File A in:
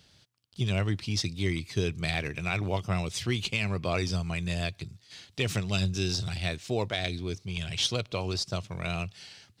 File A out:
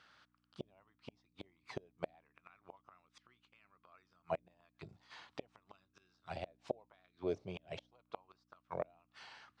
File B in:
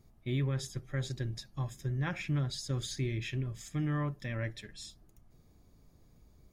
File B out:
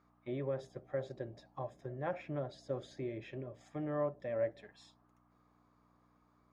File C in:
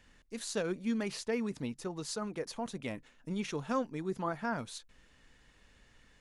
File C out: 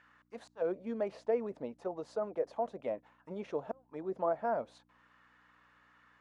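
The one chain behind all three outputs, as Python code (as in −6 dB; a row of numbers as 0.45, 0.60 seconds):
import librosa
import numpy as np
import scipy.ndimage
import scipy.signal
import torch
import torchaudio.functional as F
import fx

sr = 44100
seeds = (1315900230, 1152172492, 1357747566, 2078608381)

y = fx.gate_flip(x, sr, shuts_db=-22.0, range_db=-35)
y = fx.add_hum(y, sr, base_hz=60, snr_db=16)
y = fx.auto_wah(y, sr, base_hz=600.0, top_hz=1400.0, q=3.5, full_db=-35.5, direction='down')
y = y * 10.0 ** (10.5 / 20.0)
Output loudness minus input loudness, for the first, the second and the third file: −17.0, −5.0, 0.0 LU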